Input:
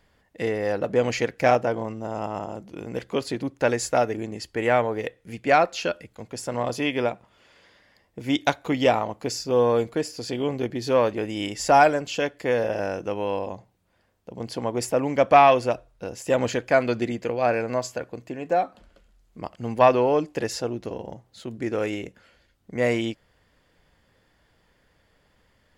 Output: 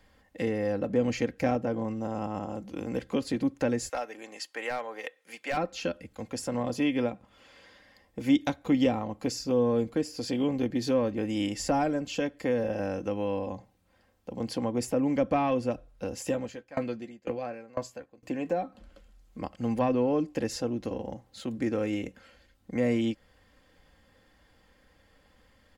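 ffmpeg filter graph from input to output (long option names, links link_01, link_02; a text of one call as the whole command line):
ffmpeg -i in.wav -filter_complex "[0:a]asettb=1/sr,asplit=3[link_01][link_02][link_03];[link_01]atrim=end=3.894[link_04];[link_02]atrim=start=3.89:end=5.57,asetpts=PTS-STARTPTS,afade=type=in:duration=0.004:curve=qsin,afade=type=out:start_time=1.676:duration=0.004:curve=qsin,highpass=770,asoftclip=type=hard:threshold=-16dB[link_05];[link_03]atrim=start=5.566[link_06];[link_04][link_05]acrossfade=duration=0.004:curve1=hsin:curve2=qsin[link_07];[link_07][link_06]acrossfade=duration=0.004:curve1=qsin:curve2=hsin,asettb=1/sr,asplit=3[link_08][link_09][link_10];[link_08]atrim=end=16.274[link_11];[link_09]atrim=start=16.27:end=18.23,asetpts=PTS-STARTPTS,afade=type=in:duration=0.004:curve=qsin,afade=type=out:start_time=1.956:duration=0.004:curve=qsin,asplit=2[link_12][link_13];[link_13]adelay=14,volume=-9dB[link_14];[link_12][link_14]amix=inputs=2:normalize=0,atrim=end_sample=86436,aeval=exprs='val(0)*pow(10,-28*if(lt(mod(2*n/s,1),2*abs(2)/1000),1-mod(2*n/s,1)/(2*abs(2)/1000),(mod(2*n/s,1)-2*abs(2)/1000)/(1-2*abs(2)/1000))/20)':channel_layout=same[link_15];[link_10]atrim=start=18.226[link_16];[link_11][link_15]acrossfade=duration=0.004:curve1=hsin:curve2=qsin[link_17];[link_17][link_16]acrossfade=duration=0.004:curve1=qsin:curve2=hsin,equalizer=frequency=97:width_type=o:width=1.4:gain=2.5,aecho=1:1:3.8:0.48,acrossover=split=340[link_18][link_19];[link_19]acompressor=threshold=-36dB:ratio=2.5[link_20];[link_18][link_20]amix=inputs=2:normalize=0" out.wav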